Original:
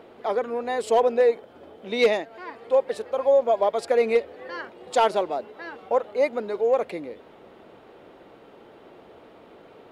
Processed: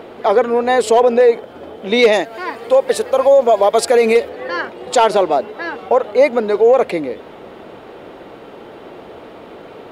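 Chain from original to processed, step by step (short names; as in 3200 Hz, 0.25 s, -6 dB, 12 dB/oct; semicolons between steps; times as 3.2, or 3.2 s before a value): 2.12–4.29 high shelf 6100 Hz +11.5 dB; maximiser +15.5 dB; gain -2.5 dB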